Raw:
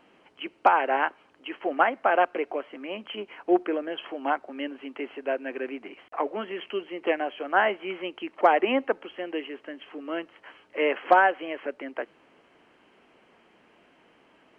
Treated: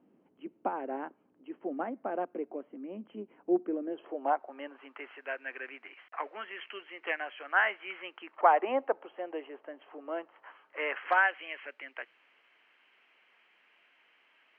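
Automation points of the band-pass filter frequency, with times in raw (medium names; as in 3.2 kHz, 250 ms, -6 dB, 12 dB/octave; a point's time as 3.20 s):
band-pass filter, Q 1.5
3.73 s 220 Hz
4.40 s 750 Hz
5.25 s 1.8 kHz
7.95 s 1.8 kHz
8.76 s 750 Hz
10.13 s 750 Hz
11.37 s 2.3 kHz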